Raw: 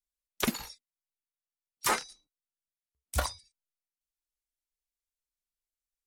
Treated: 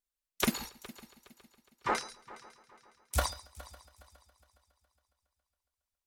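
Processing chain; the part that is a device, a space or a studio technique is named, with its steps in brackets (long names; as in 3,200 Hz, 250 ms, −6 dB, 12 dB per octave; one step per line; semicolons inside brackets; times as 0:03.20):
0:00.69–0:01.95: Bessel low-pass filter 1,400 Hz, order 2
multi-head tape echo (echo machine with several playback heads 138 ms, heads first and third, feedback 52%, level −19.5 dB; tape wow and flutter 21 cents)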